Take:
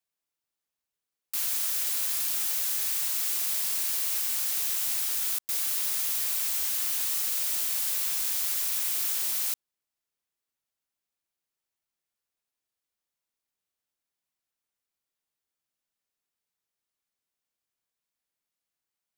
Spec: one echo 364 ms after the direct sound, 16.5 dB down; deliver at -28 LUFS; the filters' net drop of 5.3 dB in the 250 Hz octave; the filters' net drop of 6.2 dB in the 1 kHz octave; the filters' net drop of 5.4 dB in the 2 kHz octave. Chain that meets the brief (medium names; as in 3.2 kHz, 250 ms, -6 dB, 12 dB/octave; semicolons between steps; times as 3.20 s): peaking EQ 250 Hz -7 dB; peaking EQ 1 kHz -6 dB; peaking EQ 2 kHz -5.5 dB; delay 364 ms -16.5 dB; trim -2.5 dB